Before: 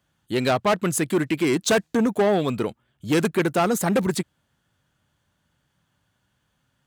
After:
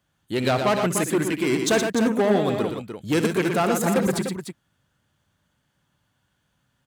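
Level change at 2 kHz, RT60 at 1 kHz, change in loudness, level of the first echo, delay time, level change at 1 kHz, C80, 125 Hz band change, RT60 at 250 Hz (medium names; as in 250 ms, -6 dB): 0.0 dB, no reverb, 0.0 dB, -12.0 dB, 63 ms, 0.0 dB, no reverb, 0.0 dB, no reverb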